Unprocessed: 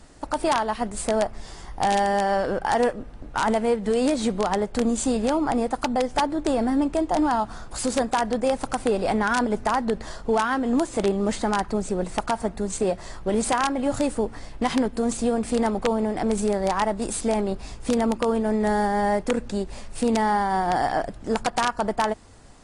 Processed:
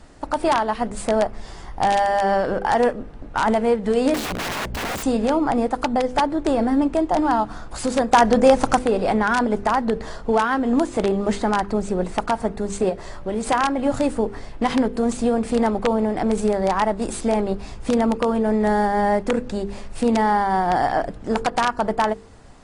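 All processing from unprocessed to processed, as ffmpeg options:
ffmpeg -i in.wav -filter_complex "[0:a]asettb=1/sr,asplit=3[link_01][link_02][link_03];[link_01]atrim=end=4.144[link_04];[link_02]atrim=start=4.14:end=5.03,asetpts=PTS-STARTPTS,afade=type=in:duration=0.004:curve=qsin,afade=type=out:start_time=0.886:duration=0.004:curve=qsin,aeval=exprs='val(0)+0.0224*(sin(2*PI*60*n/s)+sin(2*PI*2*60*n/s)/2+sin(2*PI*3*60*n/s)/3+sin(2*PI*4*60*n/s)/4+sin(2*PI*5*60*n/s)/5)':channel_layout=same,aeval=exprs='(mod(15*val(0)+1,2)-1)/15':channel_layout=same[link_05];[link_03]atrim=start=5.026[link_06];[link_04][link_05]acrossfade=duration=0.004:curve1=hsin:curve2=qsin[link_07];[link_07][link_06]acrossfade=duration=0.004:curve1=qsin:curve2=hsin,asettb=1/sr,asplit=3[link_08][link_09][link_10];[link_08]atrim=end=8.134[link_11];[link_09]atrim=start=8.13:end=8.79,asetpts=PTS-STARTPTS,afade=type=in:duration=0.004:curve=qsin,afade=type=out:start_time=0.656:duration=0.004:curve=qsin,equalizer=frequency=6200:width=3.1:gain=5,acontrast=62[link_12];[link_10]atrim=start=8.786[link_13];[link_11][link_12]acrossfade=duration=0.004:curve1=hsin:curve2=qsin[link_14];[link_14][link_13]acrossfade=duration=0.004:curve1=qsin:curve2=hsin,asettb=1/sr,asplit=3[link_15][link_16][link_17];[link_15]atrim=end=12.894[link_18];[link_16]atrim=start=12.89:end=13.47,asetpts=PTS-STARTPTS,afade=type=in:duration=0.004:curve=qsin,afade=type=out:start_time=0.576:duration=0.004:curve=qsin,aeval=exprs='val(0)+0.00282*sin(2*PI*580*n/s)':channel_layout=same,acompressor=threshold=-32dB:ratio=1.5:attack=3.2:release=140:knee=1:detection=peak[link_19];[link_17]atrim=start=13.466[link_20];[link_18][link_19]acrossfade=duration=0.004:curve1=hsin:curve2=qsin[link_21];[link_21][link_20]acrossfade=duration=0.004:curve1=qsin:curve2=hsin,highshelf=frequency=5000:gain=-8.5,bandreject=frequency=50.08:width_type=h:width=4,bandreject=frequency=100.16:width_type=h:width=4,bandreject=frequency=150.24:width_type=h:width=4,bandreject=frequency=200.32:width_type=h:width=4,bandreject=frequency=250.4:width_type=h:width=4,bandreject=frequency=300.48:width_type=h:width=4,bandreject=frequency=350.56:width_type=h:width=4,bandreject=frequency=400.64:width_type=h:width=4,bandreject=frequency=450.72:width_type=h:width=4,bandreject=frequency=500.8:width_type=h:width=4,volume=3.5dB" out.wav

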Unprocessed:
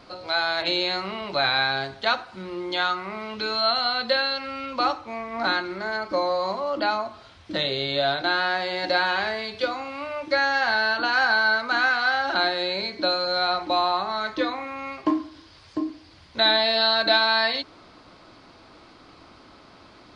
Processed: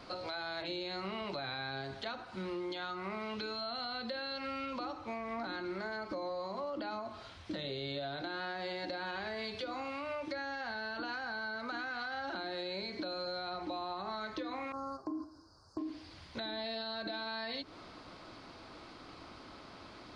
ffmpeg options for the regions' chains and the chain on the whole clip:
ffmpeg -i in.wav -filter_complex "[0:a]asettb=1/sr,asplit=3[link_01][link_02][link_03];[link_01]atrim=end=14.724[link_04];[link_02]atrim=start=14.72:end=15.78,asetpts=PTS-STARTPTS,afade=type=in:duration=0.004:curve=qsin,afade=type=out:start_time=1.056:duration=0.004:curve=qsin,equalizer=frequency=2000:width_type=o:width=0.32:gain=6.5,agate=range=-8dB:threshold=-37dB:ratio=16:release=100:detection=peak,asuperstop=centerf=2600:order=12:qfactor=0.85[link_05];[link_03]atrim=start=15.776[link_06];[link_04][link_05]acrossfade=duration=0.004:curve1=hsin:curve2=qsin[link_07];[link_07][link_06]acrossfade=duration=0.004:curve1=qsin:curve2=hsin,acrossover=split=440[link_08][link_09];[link_09]acompressor=threshold=-33dB:ratio=3[link_10];[link_08][link_10]amix=inputs=2:normalize=0,alimiter=level_in=1dB:limit=-24dB:level=0:latency=1:release=77,volume=-1dB,acompressor=threshold=-34dB:ratio=6,volume=-2dB" out.wav

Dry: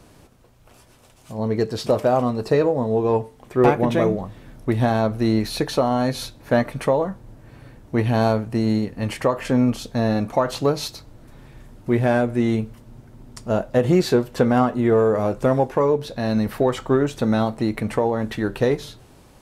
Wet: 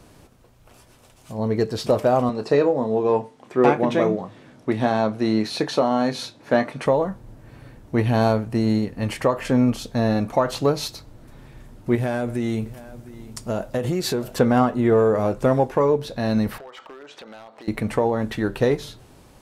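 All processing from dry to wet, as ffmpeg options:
ffmpeg -i in.wav -filter_complex "[0:a]asettb=1/sr,asplit=3[link_01][link_02][link_03];[link_01]atrim=end=2.294[link_04];[link_02]atrim=start=2.29:end=6.86,asetpts=PTS-STARTPTS,afade=type=in:duration=0.004:curve=qsin,afade=type=out:start_time=4.566:duration=0.004:curve=qsin,highpass=180,lowpass=7700,asplit=2[link_05][link_06];[link_06]adelay=28,volume=-12dB[link_07];[link_05][link_07]amix=inputs=2:normalize=0,atrim=end_sample=201537[link_08];[link_03]atrim=start=6.856[link_09];[link_04][link_08]acrossfade=duration=0.004:curve1=hsin:curve2=qsin[link_10];[link_10][link_09]acrossfade=duration=0.004:curve1=qsin:curve2=hsin,asettb=1/sr,asplit=3[link_11][link_12][link_13];[link_11]atrim=end=11.954[link_14];[link_12]atrim=start=11.95:end=14.39,asetpts=PTS-STARTPTS,afade=type=in:duration=0.004:curve=qsin,afade=type=out:start_time=2.436:duration=0.004:curve=qsin,highshelf=frequency=5300:gain=8,acompressor=threshold=-20dB:ratio=5:attack=3.2:release=140:knee=1:detection=peak,aecho=1:1:708:0.133,atrim=end_sample=107604[link_15];[link_13]atrim=start=14.386[link_16];[link_14][link_15]acrossfade=duration=0.004:curve1=hsin:curve2=qsin[link_17];[link_17][link_16]acrossfade=duration=0.004:curve1=qsin:curve2=hsin,asettb=1/sr,asplit=3[link_18][link_19][link_20];[link_18]atrim=end=16.584[link_21];[link_19]atrim=start=16.58:end=17.68,asetpts=PTS-STARTPTS,afade=type=in:duration=0.004:curve=qsin,afade=type=out:start_time=1.096:duration=0.004:curve=qsin,highpass=600,lowpass=4000,acompressor=threshold=-36dB:ratio=10:attack=3.2:release=140:knee=1:detection=peak,aeval=exprs='0.0211*(abs(mod(val(0)/0.0211+3,4)-2)-1)':channel_layout=same[link_22];[link_20]atrim=start=17.676[link_23];[link_21][link_22]acrossfade=duration=0.004:curve1=hsin:curve2=qsin[link_24];[link_24][link_23]acrossfade=duration=0.004:curve1=qsin:curve2=hsin" out.wav

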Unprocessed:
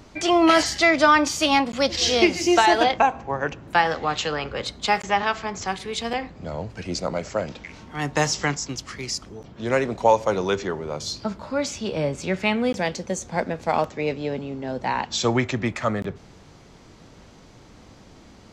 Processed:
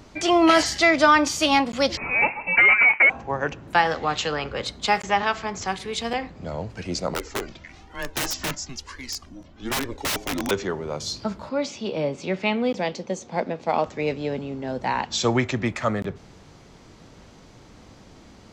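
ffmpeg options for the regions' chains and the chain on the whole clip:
ffmpeg -i in.wav -filter_complex "[0:a]asettb=1/sr,asplit=3[link_01][link_02][link_03];[link_01]atrim=end=1.974[link_04];[link_02]atrim=start=1.97:end=3.1,asetpts=PTS-STARTPTS,afade=type=in:duration=0.004:curve=qsin,afade=type=out:start_time=1.126:duration=0.004:curve=qsin,highpass=frequency=750:width_type=q:width=2.4,asoftclip=type=hard:threshold=-12.5dB,lowpass=frequency=2600:width_type=q:width=0.5098,lowpass=frequency=2600:width_type=q:width=0.6013,lowpass=frequency=2600:width_type=q:width=0.9,lowpass=frequency=2600:width_type=q:width=2.563,afreqshift=-3000[link_05];[link_03]atrim=start=3.096[link_06];[link_04][link_05]acrossfade=duration=0.004:curve1=hsin:curve2=qsin[link_07];[link_07][link_06]acrossfade=duration=0.004:curve1=qsin:curve2=hsin,asettb=1/sr,asplit=3[link_08][link_09][link_10];[link_08]atrim=end=7.144[link_11];[link_09]atrim=start=7.14:end=10.51,asetpts=PTS-STARTPTS,afade=type=in:duration=0.004:curve=qsin,afade=type=out:start_time=3.366:duration=0.004:curve=qsin,flanger=delay=1.6:depth=1.2:regen=3:speed=1.1:shape=triangular,afreqshift=-130,aeval=exprs='(mod(10*val(0)+1,2)-1)/10':channel_layout=same[link_12];[link_10]atrim=start=10.506[link_13];[link_11][link_12]acrossfade=duration=0.004:curve1=hsin:curve2=qsin[link_14];[link_14][link_13]acrossfade=duration=0.004:curve1=qsin:curve2=hsin,asettb=1/sr,asplit=3[link_15][link_16][link_17];[link_15]atrim=end=11.494[link_18];[link_16]atrim=start=11.49:end=13.86,asetpts=PTS-STARTPTS,afade=type=in:duration=0.004:curve=qsin,afade=type=out:start_time=2.366:duration=0.004:curve=qsin,highpass=170,lowpass=4800,equalizer=frequency=1600:width=2.2:gain=-6[link_19];[link_17]atrim=start=13.856[link_20];[link_18][link_19]acrossfade=duration=0.004:curve1=hsin:curve2=qsin[link_21];[link_21][link_20]acrossfade=duration=0.004:curve1=qsin:curve2=hsin" out.wav

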